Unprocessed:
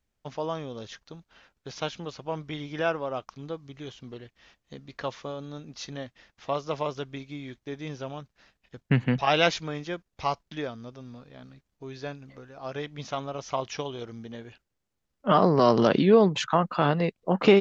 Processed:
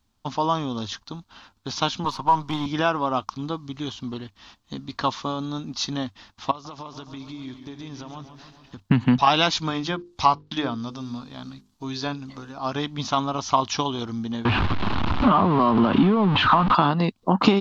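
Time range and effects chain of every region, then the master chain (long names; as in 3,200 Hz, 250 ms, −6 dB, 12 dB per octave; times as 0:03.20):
0:02.04–0:02.66: gain on one half-wave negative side −7 dB + parametric band 950 Hz +12 dB 0.37 octaves + multiband upward and downward compressor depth 40%
0:06.51–0:08.80: downward compressor 8 to 1, threshold −43 dBFS + feedback echo with a swinging delay time 139 ms, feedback 68%, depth 89 cents, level −10.5 dB
0:09.68–0:12.52: high-shelf EQ 4,100 Hz +7.5 dB + mains-hum notches 50/100/150/200/250/300/350/400/450/500 Hz + treble cut that deepens with the level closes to 2,600 Hz, closed at −29 dBFS
0:14.45–0:16.75: converter with a step at zero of −22 dBFS + low-pass filter 2,900 Hz 24 dB per octave + downward compressor 2 to 1, threshold −25 dBFS
whole clip: parametric band 97 Hz +10.5 dB 0.33 octaves; downward compressor 4 to 1, threshold −24 dBFS; octave-band graphic EQ 125/250/500/1,000/2,000/4,000 Hz −3/+8/−10/+10/−7/+7 dB; level +7.5 dB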